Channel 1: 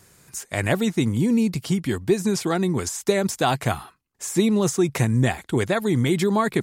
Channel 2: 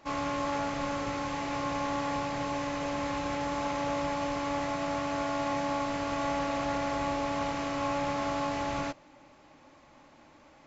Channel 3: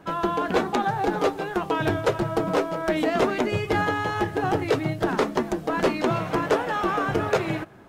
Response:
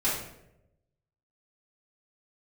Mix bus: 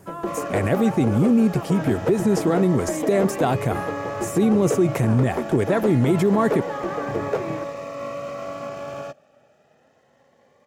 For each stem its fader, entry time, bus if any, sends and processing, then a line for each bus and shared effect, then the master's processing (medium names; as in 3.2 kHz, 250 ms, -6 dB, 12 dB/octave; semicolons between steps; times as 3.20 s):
-0.5 dB, 0.00 s, no send, none
+0.5 dB, 0.20 s, no send, comb filter that takes the minimum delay 1.6 ms; Bessel high-pass 180 Hz, order 2; Shepard-style phaser rising 0.26 Hz
-7.5 dB, 0.00 s, no send, none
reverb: none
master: graphic EQ 125/250/500/4000/8000 Hz +4/+4/+6/-7/-3 dB; peak limiter -10.5 dBFS, peak gain reduction 8 dB